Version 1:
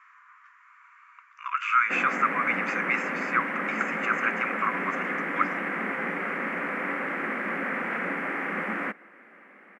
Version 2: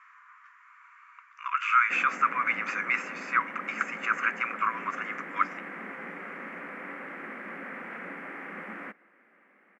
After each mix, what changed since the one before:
background -10.0 dB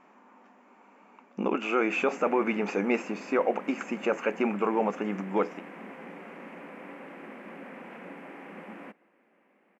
speech: remove brick-wall FIR high-pass 950 Hz; master: add high-order bell 1.6 kHz -10 dB 1.1 oct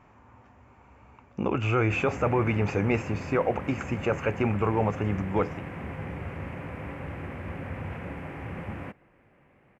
background +4.0 dB; master: remove brick-wall FIR high-pass 180 Hz

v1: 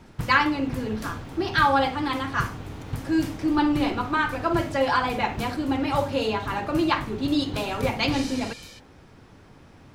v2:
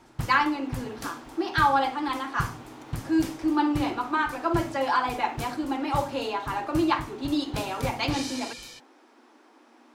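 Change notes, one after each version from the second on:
speech: add rippled Chebyshev high-pass 230 Hz, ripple 6 dB; master: add peaking EQ 7.1 kHz +2.5 dB 1.8 oct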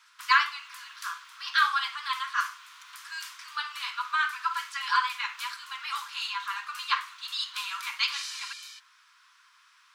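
speech: remove rippled Chebyshev high-pass 230 Hz, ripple 6 dB; master: add rippled Chebyshev high-pass 1 kHz, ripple 3 dB

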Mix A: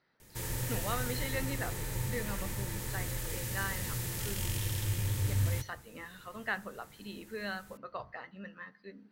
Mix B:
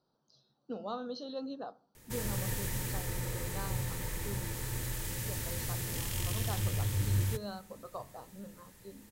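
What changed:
speech: add Butterworth band-stop 2.1 kHz, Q 0.72; background: entry +1.75 s

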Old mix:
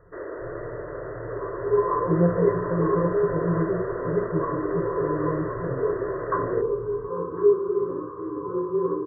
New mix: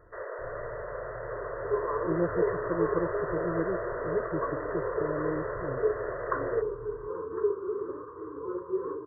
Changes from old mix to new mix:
first sound: add steep high-pass 480 Hz 36 dB/octave; reverb: off

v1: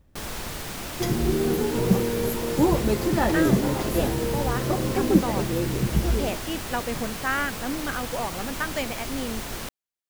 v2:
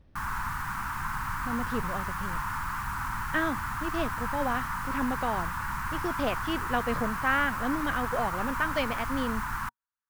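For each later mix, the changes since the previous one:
speech: add Savitzky-Golay filter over 15 samples; first sound: add FFT filter 120 Hz 0 dB, 230 Hz -6 dB, 550 Hz -30 dB, 950 Hz +10 dB, 1.5 kHz +9 dB, 2.2 kHz -4 dB, 3.5 kHz -14 dB, 13 kHz -8 dB; second sound: muted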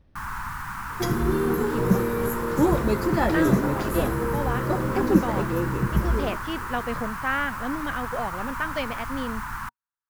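second sound: unmuted

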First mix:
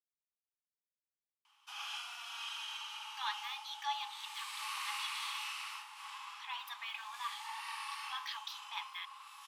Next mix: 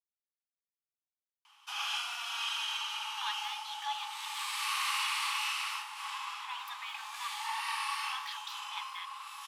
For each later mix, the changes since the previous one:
background +8.0 dB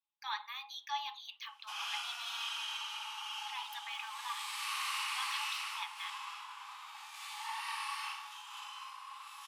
speech: entry -2.95 s; background -4.5 dB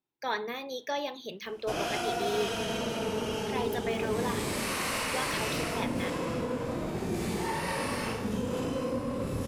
master: remove rippled Chebyshev high-pass 810 Hz, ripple 9 dB

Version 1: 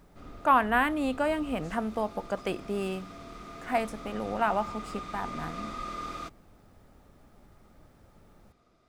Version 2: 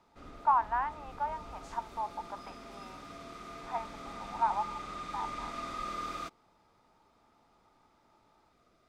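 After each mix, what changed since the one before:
speech: add ladder band-pass 950 Hz, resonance 80%; master: add bass shelf 350 Hz -5 dB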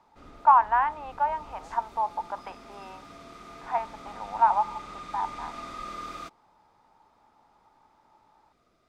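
speech +8.5 dB

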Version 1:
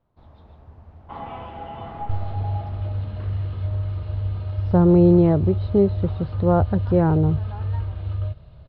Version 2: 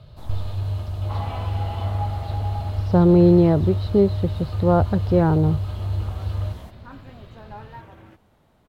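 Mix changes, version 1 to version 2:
speech: entry -1.80 s; first sound +9.0 dB; master: remove distance through air 300 m

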